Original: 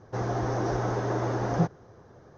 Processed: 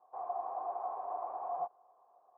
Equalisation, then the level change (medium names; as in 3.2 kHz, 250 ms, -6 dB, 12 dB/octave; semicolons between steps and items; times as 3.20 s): cascade formant filter a; high-pass 560 Hz 12 dB/octave; +2.5 dB